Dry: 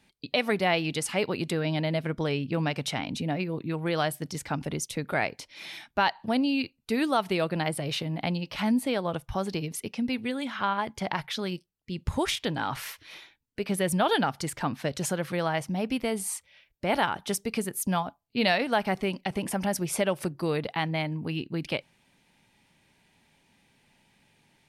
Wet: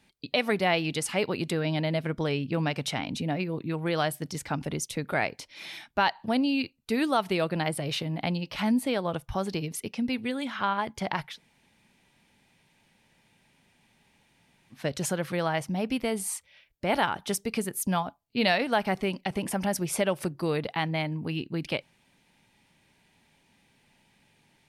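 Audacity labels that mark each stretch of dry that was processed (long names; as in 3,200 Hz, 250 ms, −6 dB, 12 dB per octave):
11.310000	14.780000	fill with room tone, crossfade 0.16 s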